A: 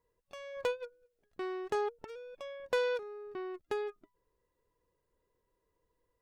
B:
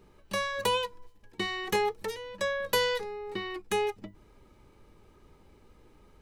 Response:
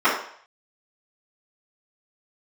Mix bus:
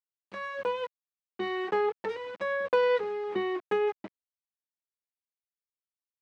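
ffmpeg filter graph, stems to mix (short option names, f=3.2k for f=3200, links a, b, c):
-filter_complex "[0:a]volume=-0.5dB[a];[1:a]alimiter=level_in=1dB:limit=-24dB:level=0:latency=1:release=13,volume=-1dB,volume=-1,adelay=2.4,volume=-1.5dB[b];[a][b]amix=inputs=2:normalize=0,dynaudnorm=f=340:g=9:m=5dB,aeval=exprs='val(0)*gte(abs(val(0)),0.0141)':c=same,highpass=190,lowpass=2.1k"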